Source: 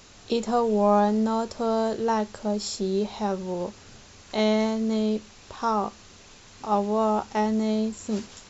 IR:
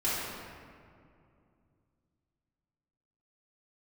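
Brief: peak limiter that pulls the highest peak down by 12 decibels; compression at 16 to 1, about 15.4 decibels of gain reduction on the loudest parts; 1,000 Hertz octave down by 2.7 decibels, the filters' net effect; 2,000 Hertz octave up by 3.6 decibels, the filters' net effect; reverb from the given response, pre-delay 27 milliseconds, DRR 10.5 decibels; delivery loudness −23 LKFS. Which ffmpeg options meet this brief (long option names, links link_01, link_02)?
-filter_complex "[0:a]equalizer=frequency=1000:width_type=o:gain=-4.5,equalizer=frequency=2000:width_type=o:gain=5.5,acompressor=threshold=-33dB:ratio=16,alimiter=level_in=8dB:limit=-24dB:level=0:latency=1,volume=-8dB,asplit=2[link_01][link_02];[1:a]atrim=start_sample=2205,adelay=27[link_03];[link_02][link_03]afir=irnorm=-1:irlink=0,volume=-20dB[link_04];[link_01][link_04]amix=inputs=2:normalize=0,volume=18dB"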